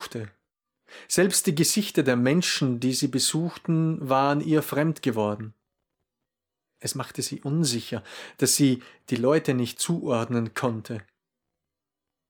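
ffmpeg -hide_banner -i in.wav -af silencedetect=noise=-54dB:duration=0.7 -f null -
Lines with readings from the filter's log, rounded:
silence_start: 5.52
silence_end: 6.80 | silence_duration: 1.28
silence_start: 11.09
silence_end: 12.29 | silence_duration: 1.20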